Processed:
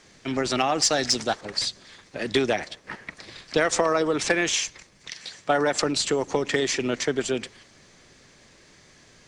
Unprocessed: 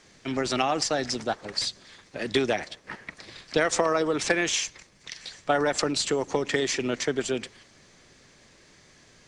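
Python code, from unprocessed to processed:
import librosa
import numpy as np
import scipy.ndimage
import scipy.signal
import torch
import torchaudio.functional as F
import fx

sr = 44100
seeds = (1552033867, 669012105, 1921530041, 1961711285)

p1 = fx.peak_eq(x, sr, hz=7000.0, db=7.5, octaves=2.8, at=(0.83, 1.41))
p2 = fx.highpass(p1, sr, hz=100.0, slope=12, at=(5.12, 5.8))
p3 = np.clip(10.0 ** (16.5 / 20.0) * p2, -1.0, 1.0) / 10.0 ** (16.5 / 20.0)
p4 = p2 + (p3 * 10.0 ** (-8.0 / 20.0))
y = p4 * 10.0 ** (-1.0 / 20.0)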